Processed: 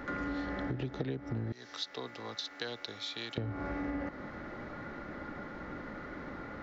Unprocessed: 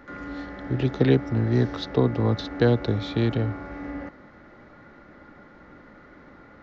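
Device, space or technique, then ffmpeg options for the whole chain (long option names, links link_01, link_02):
serial compression, peaks first: -filter_complex "[0:a]asettb=1/sr,asplit=3[link_01][link_02][link_03];[link_01]atrim=end=1.524[link_04];[link_02]atrim=start=1.52:end=3.38,asetpts=PTS-STARTPTS,afade=type=in:duration=0.004:curve=qsin,afade=type=out:start_time=1.856:duration=0.004:curve=qsin,aderivative[link_05];[link_03]atrim=start=3.376[link_06];[link_04][link_05]acrossfade=duration=0.004:curve1=hsin:curve2=qsin[link_07];[link_07][link_06]acrossfade=duration=0.004:curve1=qsin:curve2=hsin,acompressor=threshold=-32dB:ratio=6,acompressor=threshold=-41dB:ratio=2.5,volume=5.5dB"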